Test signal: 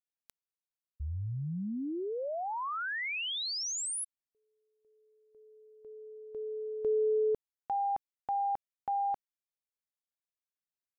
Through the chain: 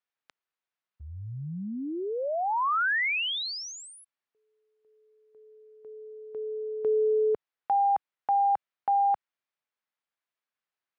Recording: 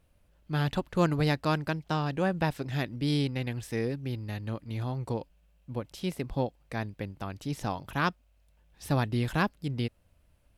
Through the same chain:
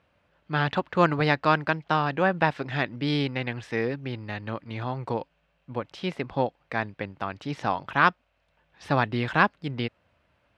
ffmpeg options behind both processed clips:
ffmpeg -i in.wav -af "highpass=100,lowpass=4500,equalizer=frequency=1400:width=0.42:gain=10" out.wav

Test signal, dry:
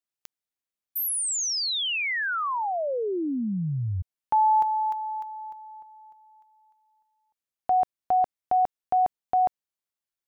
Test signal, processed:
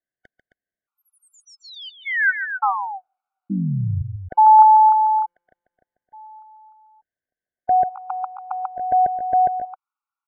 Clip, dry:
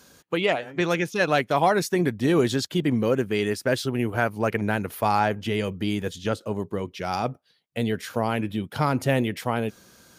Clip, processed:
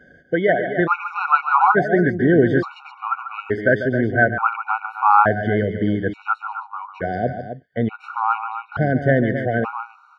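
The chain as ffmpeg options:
ffmpeg -i in.wav -af "lowpass=frequency=1400:width_type=q:width=3.1,aecho=1:1:142.9|265.3:0.316|0.316,afftfilt=real='re*gt(sin(2*PI*0.57*pts/sr)*(1-2*mod(floor(b*sr/1024/740),2)),0)':imag='im*gt(sin(2*PI*0.57*pts/sr)*(1-2*mod(floor(b*sr/1024/740),2)),0)':win_size=1024:overlap=0.75,volume=5dB" out.wav

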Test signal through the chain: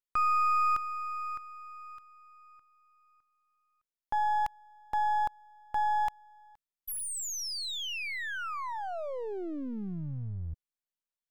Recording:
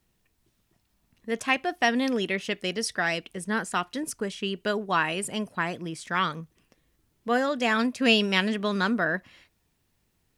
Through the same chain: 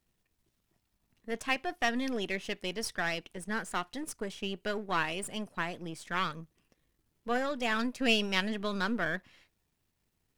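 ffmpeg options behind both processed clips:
ffmpeg -i in.wav -af "aeval=exprs='if(lt(val(0),0),0.447*val(0),val(0))':channel_layout=same,volume=-4dB" out.wav

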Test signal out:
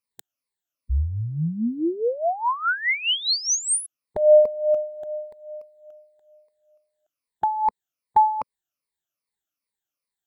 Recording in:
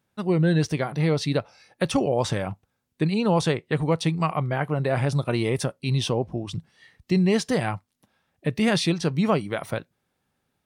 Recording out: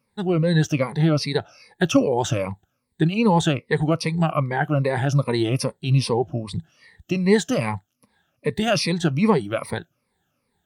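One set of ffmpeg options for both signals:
ffmpeg -i in.wav -af "afftfilt=real='re*pow(10,16/40*sin(2*PI*(0.92*log(max(b,1)*sr/1024/100)/log(2)-(-2.5)*(pts-256)/sr)))':imag='im*pow(10,16/40*sin(2*PI*(0.92*log(max(b,1)*sr/1024/100)/log(2)-(-2.5)*(pts-256)/sr)))':win_size=1024:overlap=0.75" out.wav

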